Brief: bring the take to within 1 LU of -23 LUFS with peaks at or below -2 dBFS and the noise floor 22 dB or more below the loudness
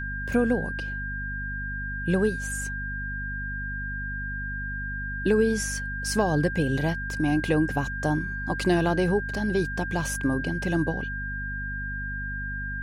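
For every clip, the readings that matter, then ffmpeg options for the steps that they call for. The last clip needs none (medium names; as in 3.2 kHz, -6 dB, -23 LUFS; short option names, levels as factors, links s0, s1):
hum 50 Hz; highest harmonic 250 Hz; hum level -32 dBFS; steady tone 1.6 kHz; tone level -32 dBFS; loudness -27.5 LUFS; peak level -9.0 dBFS; loudness target -23.0 LUFS
-> -af "bandreject=f=50:t=h:w=4,bandreject=f=100:t=h:w=4,bandreject=f=150:t=h:w=4,bandreject=f=200:t=h:w=4,bandreject=f=250:t=h:w=4"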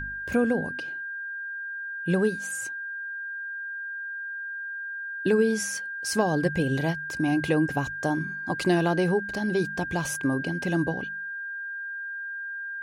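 hum not found; steady tone 1.6 kHz; tone level -32 dBFS
-> -af "bandreject=f=1600:w=30"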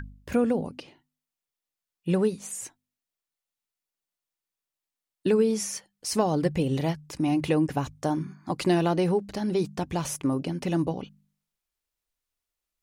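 steady tone not found; loudness -27.5 LUFS; peak level -10.0 dBFS; loudness target -23.0 LUFS
-> -af "volume=1.68"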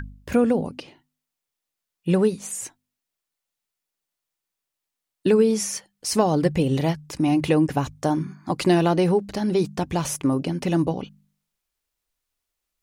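loudness -23.0 LUFS; peak level -5.5 dBFS; noise floor -85 dBFS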